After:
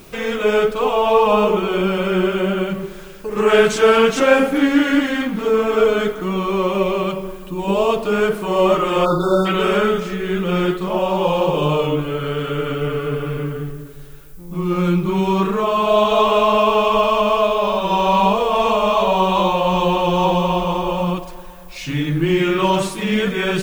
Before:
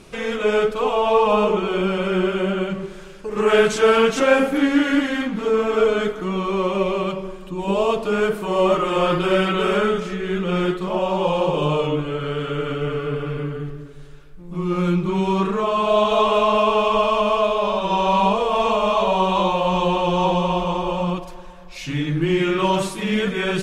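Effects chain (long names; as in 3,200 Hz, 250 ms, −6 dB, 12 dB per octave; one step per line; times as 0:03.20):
time-frequency box erased 0:09.05–0:09.46, 1,500–3,500 Hz
background noise violet −53 dBFS
level +2.5 dB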